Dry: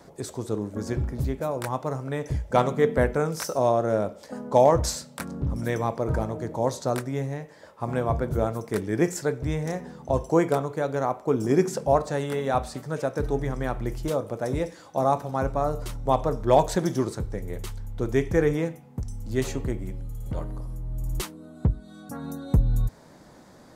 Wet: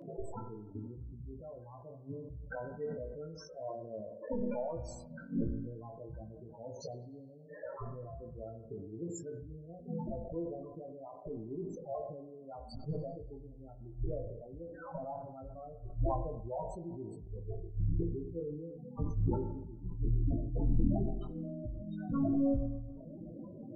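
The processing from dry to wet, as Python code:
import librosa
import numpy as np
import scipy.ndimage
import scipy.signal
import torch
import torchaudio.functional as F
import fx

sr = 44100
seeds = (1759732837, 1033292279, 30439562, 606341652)

y = fx.gate_flip(x, sr, shuts_db=-23.0, range_db=-27)
y = (np.mod(10.0 ** (29.5 / 20.0) * y + 1.0, 2.0) - 1.0) / 10.0 ** (29.5 / 20.0)
y = fx.comb_fb(y, sr, f0_hz=340.0, decay_s=0.35, harmonics='all', damping=0.0, mix_pct=40)
y = fx.spec_topn(y, sr, count=8)
y = fx.doubler(y, sr, ms=18.0, db=-5)
y = fx.rev_spring(y, sr, rt60_s=1.2, pass_ms=(41, 47, 57), chirp_ms=55, drr_db=11.5)
y = fx.sustainer(y, sr, db_per_s=42.0)
y = y * 10.0 ** (9.5 / 20.0)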